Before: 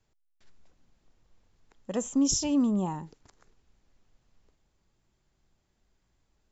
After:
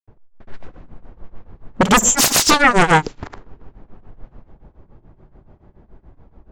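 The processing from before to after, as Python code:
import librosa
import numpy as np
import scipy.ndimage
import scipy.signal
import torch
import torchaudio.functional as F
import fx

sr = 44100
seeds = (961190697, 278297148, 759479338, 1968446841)

y = fx.fold_sine(x, sr, drive_db=18, ceiling_db=-14.5)
y = fx.env_lowpass(y, sr, base_hz=760.0, full_db=-19.0)
y = fx.granulator(y, sr, seeds[0], grain_ms=178.0, per_s=7.0, spray_ms=100.0, spread_st=0)
y = y * 10.0 ** (8.5 / 20.0)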